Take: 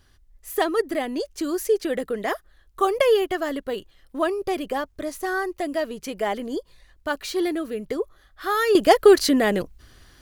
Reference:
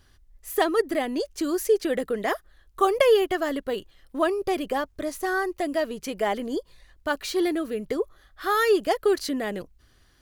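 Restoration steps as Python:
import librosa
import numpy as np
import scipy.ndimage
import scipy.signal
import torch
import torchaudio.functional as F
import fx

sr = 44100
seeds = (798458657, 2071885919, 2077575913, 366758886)

y = fx.fix_level(x, sr, at_s=8.75, step_db=-9.0)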